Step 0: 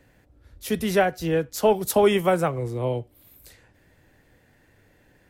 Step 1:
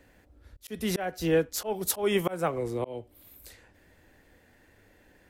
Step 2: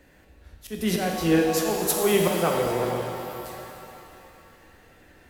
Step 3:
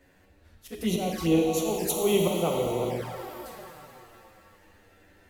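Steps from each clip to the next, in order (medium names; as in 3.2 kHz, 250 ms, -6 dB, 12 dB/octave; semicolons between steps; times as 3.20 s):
peaking EQ 130 Hz -11.5 dB 0.43 oct; slow attack 268 ms
pitch-shifted reverb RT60 2.8 s, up +7 st, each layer -8 dB, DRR 0 dB; trim +2.5 dB
touch-sensitive flanger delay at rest 11.9 ms, full sweep at -21.5 dBFS; trim -1.5 dB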